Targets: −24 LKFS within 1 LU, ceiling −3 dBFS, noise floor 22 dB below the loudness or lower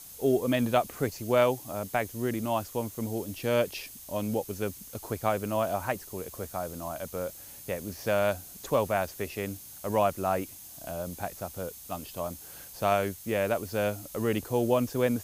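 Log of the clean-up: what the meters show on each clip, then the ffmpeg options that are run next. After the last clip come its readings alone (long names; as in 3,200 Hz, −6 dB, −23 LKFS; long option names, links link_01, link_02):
interfering tone 6,400 Hz; level of the tone −58 dBFS; background noise floor −47 dBFS; target noise floor −53 dBFS; integrated loudness −30.5 LKFS; sample peak −10.0 dBFS; target loudness −24.0 LKFS
→ -af "bandreject=frequency=6400:width=30"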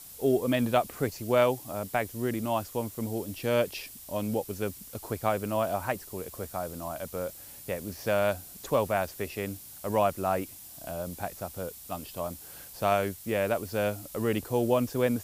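interfering tone none found; background noise floor −47 dBFS; target noise floor −53 dBFS
→ -af "afftdn=noise_reduction=6:noise_floor=-47"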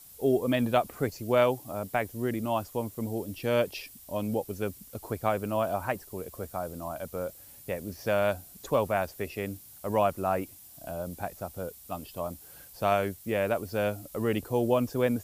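background noise floor −51 dBFS; target noise floor −53 dBFS
→ -af "afftdn=noise_reduction=6:noise_floor=-51"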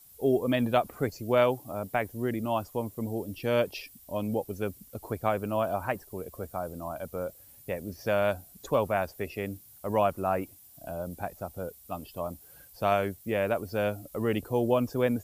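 background noise floor −54 dBFS; integrated loudness −30.5 LKFS; sample peak −10.0 dBFS; target loudness −24.0 LKFS
→ -af "volume=6.5dB"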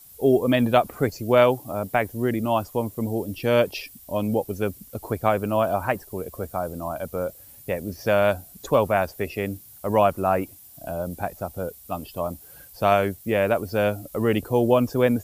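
integrated loudness −24.0 LKFS; sample peak −3.5 dBFS; background noise floor −48 dBFS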